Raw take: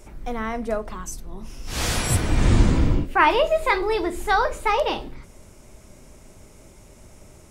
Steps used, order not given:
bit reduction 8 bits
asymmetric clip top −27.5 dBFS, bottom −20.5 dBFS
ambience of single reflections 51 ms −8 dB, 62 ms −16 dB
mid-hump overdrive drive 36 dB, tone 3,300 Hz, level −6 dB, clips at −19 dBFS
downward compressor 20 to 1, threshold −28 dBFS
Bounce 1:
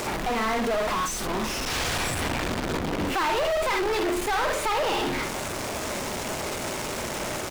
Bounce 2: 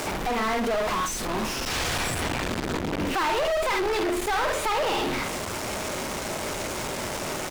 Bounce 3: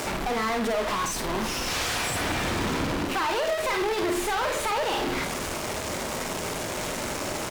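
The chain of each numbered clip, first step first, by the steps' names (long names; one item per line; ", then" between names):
ambience of single reflections, then asymmetric clip, then downward compressor, then bit reduction, then mid-hump overdrive
ambience of single reflections, then bit reduction, then asymmetric clip, then downward compressor, then mid-hump overdrive
downward compressor, then bit reduction, then mid-hump overdrive, then asymmetric clip, then ambience of single reflections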